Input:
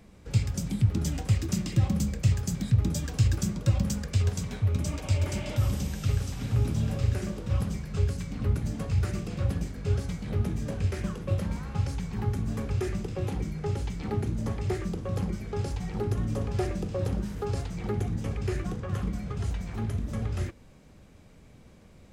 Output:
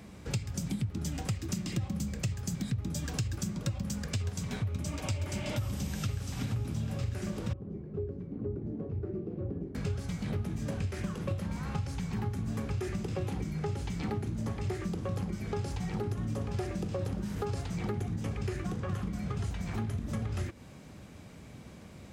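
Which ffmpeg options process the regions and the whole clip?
ffmpeg -i in.wav -filter_complex "[0:a]asettb=1/sr,asplit=3[link_01][link_02][link_03];[link_01]atrim=end=7.534[link_04];[link_02]atrim=start=7.53:end=9.75,asetpts=PTS-STARTPTS,afade=type=in:duration=0.004:curve=qsin,afade=type=out:start_time=2.216:duration=0.004:curve=qsin,bandpass=frequency=380:width_type=q:width=4.1,aemphasis=mode=reproduction:type=bsi[link_05];[link_03]atrim=start=9.746[link_06];[link_04][link_05]acrossfade=duration=0.004:curve1=hsin:curve2=qsin[link_07];[link_07][link_06]acrossfade=duration=0.004:curve1=qsin:curve2=hsin,highpass=73,equalizer=frequency=480:width=2.8:gain=-3,acompressor=threshold=-37dB:ratio=6,volume=6dB" out.wav

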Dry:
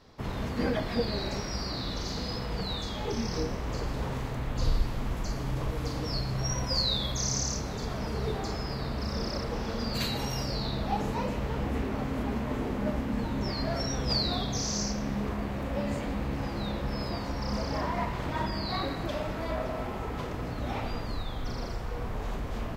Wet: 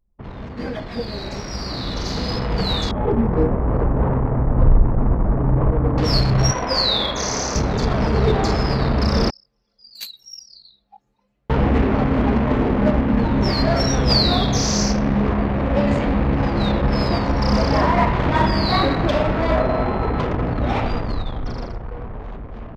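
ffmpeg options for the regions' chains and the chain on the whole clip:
ffmpeg -i in.wav -filter_complex "[0:a]asettb=1/sr,asplit=3[link_01][link_02][link_03];[link_01]atrim=end=2.914[link_04];[link_02]atrim=start=2.91:end=5.98,asetpts=PTS-STARTPTS,afade=type=in:duration=0.004:curve=qsin,afade=type=out:start_time=3.066:duration=0.004:curve=qsin,lowpass=1300,volume=21dB,asoftclip=hard,volume=-21dB[link_05];[link_03]atrim=start=5.976[link_06];[link_04][link_05]acrossfade=duration=0.004:curve1=hsin:curve2=qsin[link_07];[link_07][link_06]acrossfade=duration=0.004:curve1=qsin:curve2=hsin,asettb=1/sr,asplit=3[link_08][link_09][link_10];[link_08]atrim=end=6.514[link_11];[link_09]atrim=start=6.51:end=7.55,asetpts=PTS-STARTPTS,afade=type=in:duration=0.004:curve=qsin,afade=type=out:start_time=1.036:duration=0.004:curve=qsin,bass=frequency=250:gain=-13,treble=frequency=4000:gain=-8,asplit=2[link_12][link_13];[link_13]adelay=42,volume=-8dB[link_14];[link_12][link_14]amix=inputs=2:normalize=0,atrim=end_sample=45864[link_15];[link_10]atrim=start=7.546[link_16];[link_11][link_15]acrossfade=duration=0.004:curve1=hsin:curve2=qsin[link_17];[link_17][link_16]acrossfade=duration=0.004:curve1=qsin:curve2=hsin,asettb=1/sr,asplit=3[link_18][link_19][link_20];[link_18]atrim=end=9.304[link_21];[link_19]atrim=start=9.3:end=11.5,asetpts=PTS-STARTPTS,afade=type=in:duration=0.004:curve=qsin,afade=type=out:start_time=2.196:duration=0.004:curve=qsin,aderivative,bandreject=frequency=960:width=12,flanger=delay=19:depth=6.3:speed=1.3[link_22];[link_20]atrim=start=11.496[link_23];[link_21][link_22]acrossfade=duration=0.004:curve1=hsin:curve2=qsin[link_24];[link_24][link_23]acrossfade=duration=0.004:curve1=qsin:curve2=hsin,asettb=1/sr,asplit=3[link_25][link_26][link_27];[link_25]atrim=end=19.604[link_28];[link_26]atrim=start=19.6:end=20.2,asetpts=PTS-STARTPTS,afade=type=in:duration=0.004:curve=qsin,afade=type=out:start_time=0.596:duration=0.004:curve=qsin,acrossover=split=2700[link_29][link_30];[link_30]acompressor=threshold=-57dB:ratio=4:attack=1:release=60[link_31];[link_29][link_31]amix=inputs=2:normalize=0,aeval=exprs='val(0)+0.00178*sin(2*PI*4100*n/s)':channel_layout=same[link_32];[link_27]atrim=start=20.196[link_33];[link_28][link_32]acrossfade=duration=0.004:curve1=hsin:curve2=qsin[link_34];[link_34][link_33]acrossfade=duration=0.004:curve1=qsin:curve2=hsin,anlmdn=1,dynaudnorm=framelen=310:gausssize=13:maxgain=15dB,adynamicequalizer=threshold=0.02:dfrequency=4900:dqfactor=0.7:tfrequency=4900:tqfactor=0.7:attack=5:release=100:ratio=0.375:range=3:mode=cutabove:tftype=highshelf" out.wav

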